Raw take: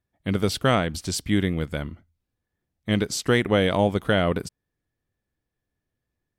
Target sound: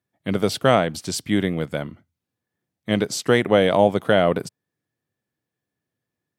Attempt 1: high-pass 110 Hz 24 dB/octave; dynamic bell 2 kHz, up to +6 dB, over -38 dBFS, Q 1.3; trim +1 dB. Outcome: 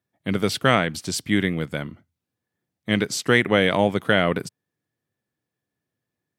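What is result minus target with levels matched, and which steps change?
2 kHz band +5.0 dB
change: dynamic bell 650 Hz, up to +6 dB, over -38 dBFS, Q 1.3

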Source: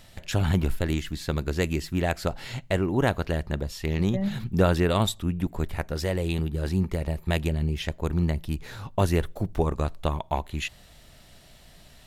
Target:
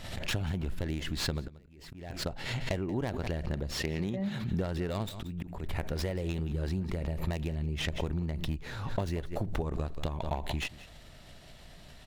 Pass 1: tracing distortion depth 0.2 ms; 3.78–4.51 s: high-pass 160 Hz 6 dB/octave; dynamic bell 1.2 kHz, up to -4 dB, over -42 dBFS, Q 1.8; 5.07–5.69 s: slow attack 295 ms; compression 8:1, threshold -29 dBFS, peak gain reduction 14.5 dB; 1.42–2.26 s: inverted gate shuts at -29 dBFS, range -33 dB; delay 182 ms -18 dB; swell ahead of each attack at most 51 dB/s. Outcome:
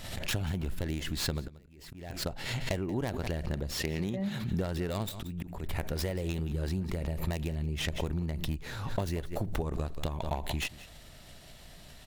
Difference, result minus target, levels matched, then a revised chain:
8 kHz band +3.0 dB
tracing distortion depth 0.2 ms; 3.78–4.51 s: high-pass 160 Hz 6 dB/octave; dynamic bell 1.2 kHz, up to -4 dB, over -42 dBFS, Q 1.8; 5.07–5.69 s: slow attack 295 ms; compression 8:1, threshold -29 dBFS, peak gain reduction 14.5 dB; treble shelf 7.5 kHz -10 dB; 1.42–2.26 s: inverted gate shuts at -29 dBFS, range -33 dB; delay 182 ms -18 dB; swell ahead of each attack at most 51 dB/s

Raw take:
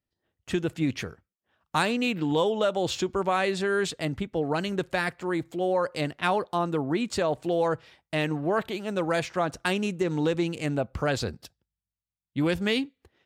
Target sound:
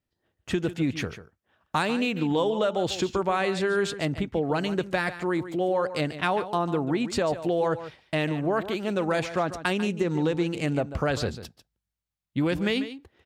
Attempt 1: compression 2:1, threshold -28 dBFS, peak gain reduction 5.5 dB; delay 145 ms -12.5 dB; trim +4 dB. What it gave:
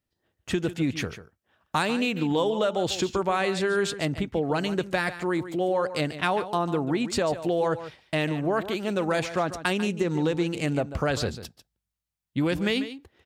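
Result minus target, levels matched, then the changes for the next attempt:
8 kHz band +3.0 dB
add after compression: treble shelf 4.7 kHz -4.5 dB

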